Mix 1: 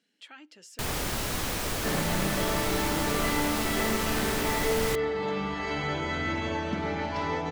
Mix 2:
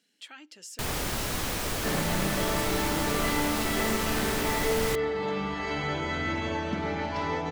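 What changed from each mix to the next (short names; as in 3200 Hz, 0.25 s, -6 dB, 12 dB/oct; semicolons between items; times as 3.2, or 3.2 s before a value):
speech: add high shelf 4500 Hz +10 dB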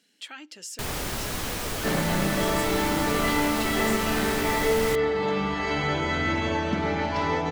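speech +5.5 dB; second sound +4.5 dB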